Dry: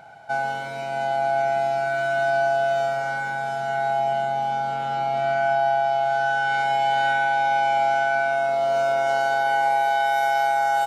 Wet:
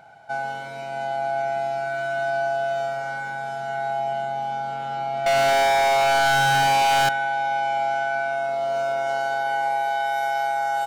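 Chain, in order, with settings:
0:05.26–0:07.09: leveller curve on the samples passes 5
level −3 dB

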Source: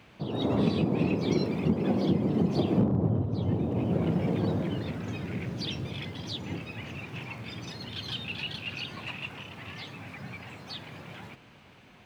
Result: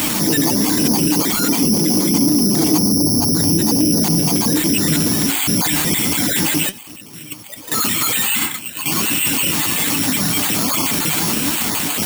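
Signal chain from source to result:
time-frequency cells dropped at random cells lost 24%
downward compressor, threshold −31 dBFS, peak gain reduction 11 dB
octave-band graphic EQ 125/500/1,000/4,000 Hz −4/−7/+5/+11 dB
0:08.39–0:08.86: gate with flip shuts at −28 dBFS, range −32 dB
bad sample-rate conversion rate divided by 8×, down none, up zero stuff
parametric band 270 Hz +14 dB 2.1 octaves
feedback delay network reverb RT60 0.41 s, low-frequency decay 0.8×, high-frequency decay 0.7×, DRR 10.5 dB
0:06.69–0:07.72: noise gate −20 dBFS, range −34 dB
flanger 1.3 Hz, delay 2.9 ms, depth 4.1 ms, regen +63%
boost into a limiter +34.5 dB
level −2.5 dB

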